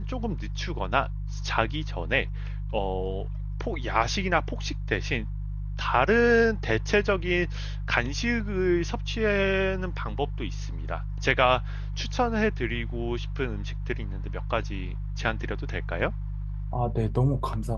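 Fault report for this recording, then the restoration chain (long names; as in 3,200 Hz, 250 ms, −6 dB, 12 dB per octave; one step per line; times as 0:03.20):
mains hum 50 Hz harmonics 3 −32 dBFS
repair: hum removal 50 Hz, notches 3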